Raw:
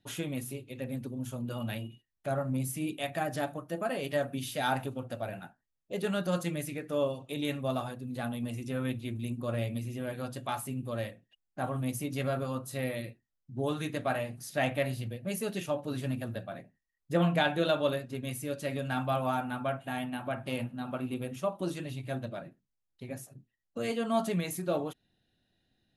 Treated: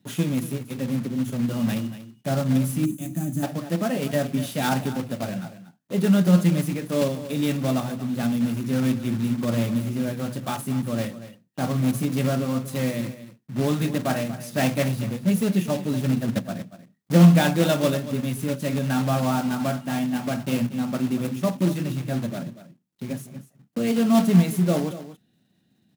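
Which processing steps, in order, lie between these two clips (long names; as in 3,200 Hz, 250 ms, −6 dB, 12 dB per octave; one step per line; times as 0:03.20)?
one scale factor per block 3 bits
high-pass filter 97 Hz
parametric band 190 Hz +14 dB 1.3 octaves
0:16.15–0:16.59: transient designer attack +8 dB, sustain −6 dB
single-tap delay 236 ms −14 dB
0:02.85–0:03.43: gain on a spectral selection 330–6,000 Hz −15 dB
level +3 dB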